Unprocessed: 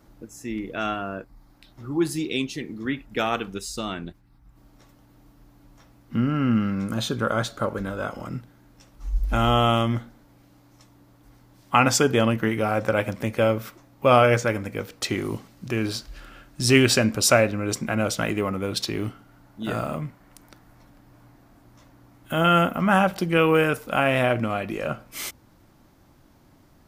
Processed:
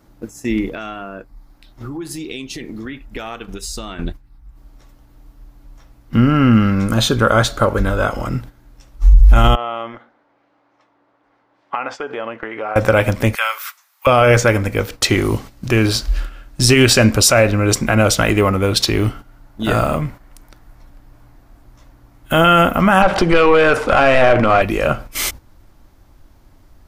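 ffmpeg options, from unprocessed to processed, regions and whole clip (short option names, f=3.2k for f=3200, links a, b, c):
-filter_complex "[0:a]asettb=1/sr,asplit=3[a][b][c];[a]atrim=end=0.684[d];[b]atrim=start=0.68:end=3.99,asetpts=PTS-STARTPTS,afade=t=in:d=0.004:c=qsin,afade=t=out:st=3.306:d=0.004:c=qsin,acompressor=threshold=-36dB:ratio=8:attack=3.2:release=140:knee=1:detection=peak,bandreject=f=50:t=h:w=6,bandreject=f=100:t=h:w=6,bandreject=f=150:t=h:w=6[e];[c]atrim=start=3.986[f];[d][e]acrossfade=d=0.004:c1=hsin:c2=qsin[g];[g][f]acrossfade=d=0.004:c1=qsin:c2=hsin,asettb=1/sr,asplit=3[h][i][j];[h]atrim=end=9.554[k];[i]atrim=start=9.55:end=12.76,asetpts=PTS-STARTPTS,afade=t=in:d=0.004:c=qsin,afade=t=out:st=3.206:d=0.004:c=qsin,acompressor=threshold=-27dB:ratio=20:attack=3.2:release=140:knee=1:detection=peak,highpass=450,lowpass=2.1k[l];[j]atrim=start=12.756[m];[k][l]acrossfade=d=0.004:c1=hsin:c2=qsin[n];[n][m]acrossfade=d=0.004:c1=qsin:c2=hsin,asettb=1/sr,asplit=3[o][p][q];[o]atrim=end=13.354[r];[p]atrim=start=13.35:end=14.07,asetpts=PTS-STARTPTS,afade=t=in:d=0.004:c=qsin,afade=t=out:st=0.716:d=0.004:c=qsin,highpass=f=1.1k:w=0.5412,highpass=f=1.1k:w=1.3066,acrossover=split=3100[s][t];[t]acompressor=threshold=-47dB:ratio=4:attack=1:release=60[u];[s][u]amix=inputs=2:normalize=0,highshelf=f=6.5k:g=10[v];[q]atrim=start=14.066[w];[r][v]acrossfade=d=0.004:c1=hsin:c2=qsin[x];[x][w]acrossfade=d=0.004:c1=qsin:c2=hsin,asettb=1/sr,asplit=3[y][z][aa];[y]atrim=end=23.024[ab];[z]atrim=start=23.02:end=24.62,asetpts=PTS-STARTPTS,afade=t=in:d=0.004:c=qsin,afade=t=out:st=1.596:d=0.004:c=qsin,lowpass=f=10k:w=0.5412,lowpass=f=10k:w=1.3066,acompressor=threshold=-25dB:ratio=8:attack=3.2:release=140:knee=1:detection=peak,asplit=2[ac][ad];[ad]highpass=f=720:p=1,volume=22dB,asoftclip=type=tanh:threshold=-10.5dB[ae];[ac][ae]amix=inputs=2:normalize=0,lowpass=f=1.2k:p=1,volume=-6dB[af];[aa]atrim=start=24.616[ag];[ab][af]acrossfade=d=0.004:c1=hsin:c2=qsin[ah];[ah][ag]acrossfade=d=0.004:c1=qsin:c2=hsin,agate=range=-9dB:threshold=-42dB:ratio=16:detection=peak,asubboost=boost=5.5:cutoff=65,alimiter=level_in=13dB:limit=-1dB:release=50:level=0:latency=1,volume=-1dB"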